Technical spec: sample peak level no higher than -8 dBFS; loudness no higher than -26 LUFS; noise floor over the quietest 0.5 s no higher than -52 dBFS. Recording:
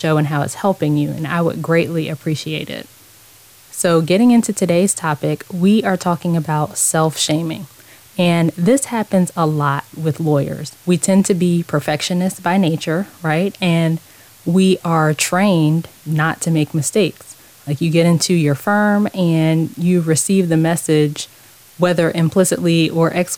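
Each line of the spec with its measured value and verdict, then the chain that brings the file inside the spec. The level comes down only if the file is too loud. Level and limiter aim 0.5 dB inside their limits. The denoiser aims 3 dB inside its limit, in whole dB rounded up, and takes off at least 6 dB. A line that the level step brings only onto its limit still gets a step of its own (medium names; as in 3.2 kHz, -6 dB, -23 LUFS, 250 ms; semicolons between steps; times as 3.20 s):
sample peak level -3.5 dBFS: fail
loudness -16.5 LUFS: fail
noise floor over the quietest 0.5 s -45 dBFS: fail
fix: trim -10 dB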